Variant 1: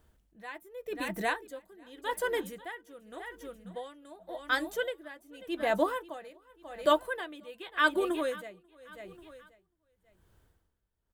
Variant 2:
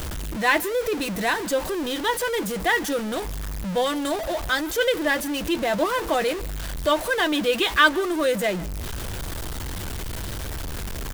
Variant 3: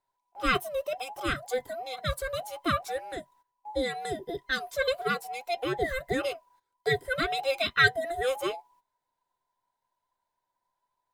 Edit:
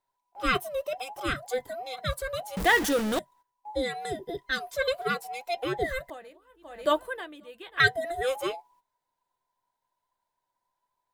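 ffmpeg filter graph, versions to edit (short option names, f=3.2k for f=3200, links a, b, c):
-filter_complex "[2:a]asplit=3[a][b][c];[a]atrim=end=2.572[d];[1:a]atrim=start=2.568:end=3.192[e];[b]atrim=start=3.188:end=6.102[f];[0:a]atrim=start=6.098:end=7.802[g];[c]atrim=start=7.798[h];[d][e]acrossfade=d=0.004:c1=hsin:c2=hsin[i];[i][f]acrossfade=d=0.004:c1=hsin:c2=hsin[j];[j][g]acrossfade=d=0.004:c1=hsin:c2=hsin[k];[k][h]acrossfade=d=0.004:c1=hsin:c2=hsin"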